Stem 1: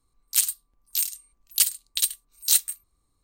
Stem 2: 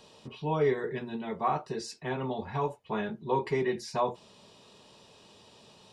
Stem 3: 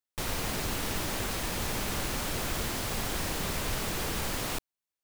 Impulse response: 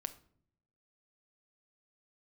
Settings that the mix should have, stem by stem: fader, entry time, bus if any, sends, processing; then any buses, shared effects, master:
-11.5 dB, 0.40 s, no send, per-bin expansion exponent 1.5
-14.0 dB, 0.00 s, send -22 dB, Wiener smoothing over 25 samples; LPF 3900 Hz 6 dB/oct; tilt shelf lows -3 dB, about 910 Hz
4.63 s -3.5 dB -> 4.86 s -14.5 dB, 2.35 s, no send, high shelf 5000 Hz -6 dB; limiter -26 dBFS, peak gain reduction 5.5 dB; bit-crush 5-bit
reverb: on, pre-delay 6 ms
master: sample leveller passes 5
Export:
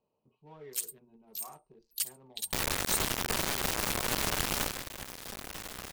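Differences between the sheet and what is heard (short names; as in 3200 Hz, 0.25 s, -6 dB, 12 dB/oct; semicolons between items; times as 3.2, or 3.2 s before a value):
stem 2 -14.0 dB -> -21.0 dB; stem 3 -3.5 dB -> +4.5 dB; master: missing sample leveller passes 5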